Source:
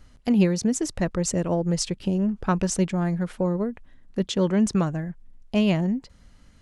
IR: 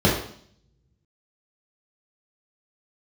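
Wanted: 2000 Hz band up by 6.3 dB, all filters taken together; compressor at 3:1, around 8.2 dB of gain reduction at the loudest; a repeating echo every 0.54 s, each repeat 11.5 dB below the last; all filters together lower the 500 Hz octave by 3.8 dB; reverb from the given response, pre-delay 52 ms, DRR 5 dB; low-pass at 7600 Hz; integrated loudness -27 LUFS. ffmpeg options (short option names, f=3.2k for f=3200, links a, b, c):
-filter_complex "[0:a]lowpass=7.6k,equalizer=f=500:t=o:g=-5.5,equalizer=f=2k:t=o:g=8.5,acompressor=threshold=-28dB:ratio=3,aecho=1:1:540|1080|1620:0.266|0.0718|0.0194,asplit=2[a][b];[1:a]atrim=start_sample=2205,adelay=52[c];[b][c]afir=irnorm=-1:irlink=0,volume=-24.5dB[d];[a][d]amix=inputs=2:normalize=0,volume=-2dB"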